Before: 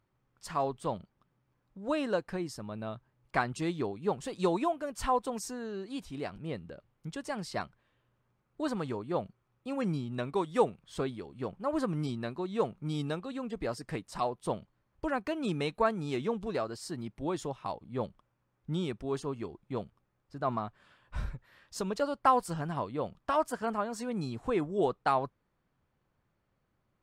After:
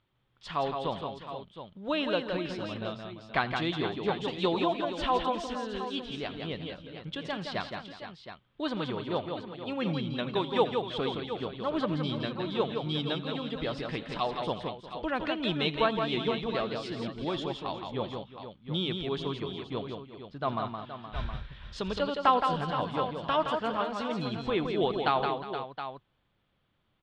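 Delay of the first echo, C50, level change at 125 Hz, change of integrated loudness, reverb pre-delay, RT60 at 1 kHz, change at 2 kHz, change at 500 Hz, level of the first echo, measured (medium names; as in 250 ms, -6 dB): 85 ms, no reverb, +1.5 dB, +2.0 dB, no reverb, no reverb, +5.0 dB, +2.0 dB, -19.0 dB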